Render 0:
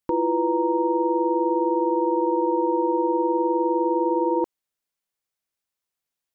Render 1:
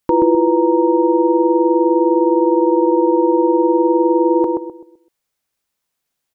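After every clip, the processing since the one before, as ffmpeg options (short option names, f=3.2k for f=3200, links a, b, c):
-filter_complex "[0:a]asplit=2[a][b];[b]adelay=128,lowpass=f=940:p=1,volume=-3dB,asplit=2[c][d];[d]adelay=128,lowpass=f=940:p=1,volume=0.35,asplit=2[e][f];[f]adelay=128,lowpass=f=940:p=1,volume=0.35,asplit=2[g][h];[h]adelay=128,lowpass=f=940:p=1,volume=0.35,asplit=2[i][j];[j]adelay=128,lowpass=f=940:p=1,volume=0.35[k];[a][c][e][g][i][k]amix=inputs=6:normalize=0,volume=9dB"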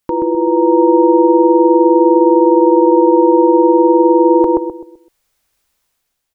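-af "asubboost=boost=3.5:cutoff=76,alimiter=limit=-9.5dB:level=0:latency=1:release=190,dynaudnorm=f=160:g=7:m=9dB,volume=1.5dB"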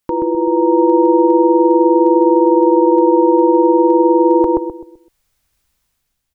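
-af "asubboost=boost=4.5:cutoff=240,volume=-1dB"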